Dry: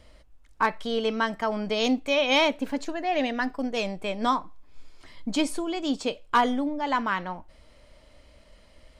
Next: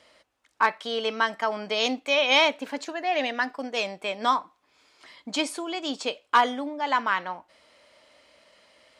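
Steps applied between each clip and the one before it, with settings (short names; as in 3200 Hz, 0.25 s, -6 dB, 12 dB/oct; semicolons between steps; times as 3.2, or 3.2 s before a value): weighting filter A; gain +2 dB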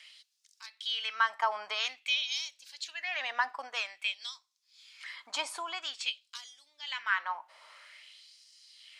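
compressor 1.5:1, threshold -49 dBFS, peak gain reduction 12.5 dB; LFO high-pass sine 0.5 Hz 910–5400 Hz; gain +2.5 dB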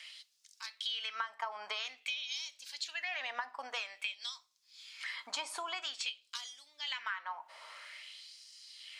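compressor 8:1, threshold -39 dBFS, peak gain reduction 17.5 dB; reverb, pre-delay 4 ms, DRR 13 dB; gain +3.5 dB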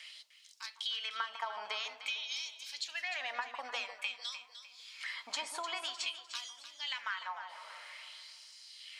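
echo with dull and thin repeats by turns 0.151 s, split 1000 Hz, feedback 58%, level -6 dB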